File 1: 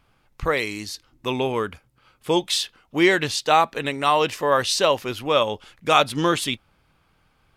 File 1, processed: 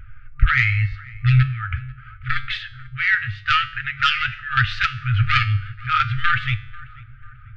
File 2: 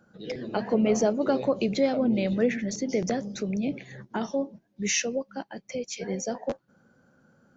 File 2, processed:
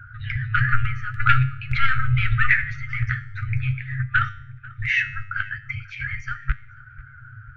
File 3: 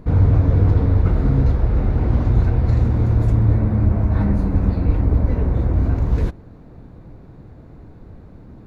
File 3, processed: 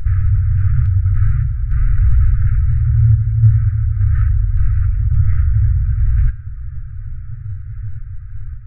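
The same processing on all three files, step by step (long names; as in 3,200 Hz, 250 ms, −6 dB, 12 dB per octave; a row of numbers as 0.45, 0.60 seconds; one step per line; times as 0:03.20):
downward compressor 2.5 to 1, threshold −19 dBFS
low-pass filter 1,800 Hz 24 dB per octave
low-shelf EQ 120 Hz +6 dB
sample-and-hold tremolo 3.5 Hz, depth 75%
sine wavefolder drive 10 dB, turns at −6.5 dBFS
parametric band 1,000 Hz −11.5 dB 0.65 octaves
flanger 0.46 Hz, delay 1.9 ms, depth 8.5 ms, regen +51%
tuned comb filter 100 Hz, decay 0.65 s, harmonics all, mix 60%
feedback echo with a low-pass in the loop 491 ms, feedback 57%, low-pass 1,400 Hz, level −19 dB
brick-wall band-stop 130–1,200 Hz
normalise the peak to −1.5 dBFS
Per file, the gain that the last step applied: +17.5, +23.5, +10.0 decibels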